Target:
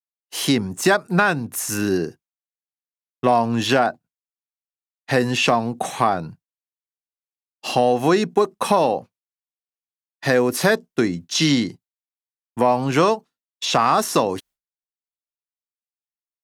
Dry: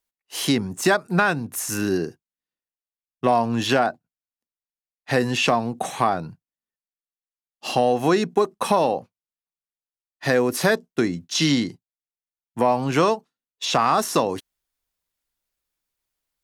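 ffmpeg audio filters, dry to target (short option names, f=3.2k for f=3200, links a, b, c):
-af "agate=range=-33dB:threshold=-44dB:ratio=3:detection=peak,volume=2dB"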